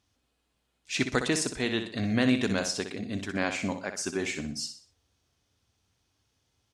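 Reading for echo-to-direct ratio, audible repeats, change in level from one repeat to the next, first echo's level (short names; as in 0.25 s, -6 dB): -8.0 dB, 4, -8.5 dB, -8.5 dB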